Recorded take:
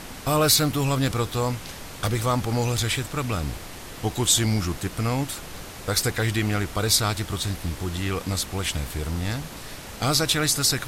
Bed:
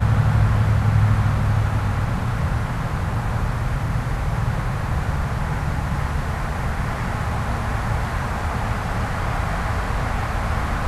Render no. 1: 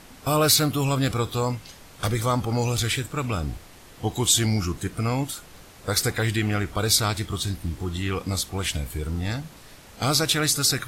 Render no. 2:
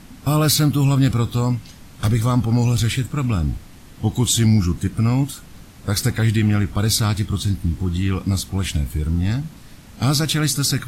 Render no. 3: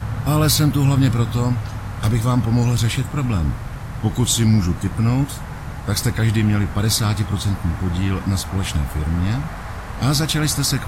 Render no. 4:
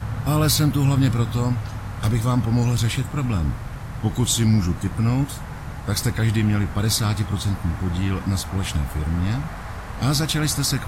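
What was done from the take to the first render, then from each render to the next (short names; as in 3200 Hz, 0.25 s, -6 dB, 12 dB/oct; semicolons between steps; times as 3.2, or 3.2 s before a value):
noise print and reduce 9 dB
resonant low shelf 320 Hz +7.5 dB, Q 1.5
add bed -7.5 dB
gain -2.5 dB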